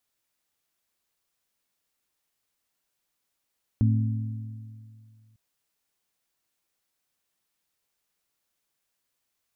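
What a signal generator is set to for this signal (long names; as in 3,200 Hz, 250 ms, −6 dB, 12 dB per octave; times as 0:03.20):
struck metal bell, lowest mode 110 Hz, modes 3, decay 2.29 s, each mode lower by 6 dB, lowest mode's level −17.5 dB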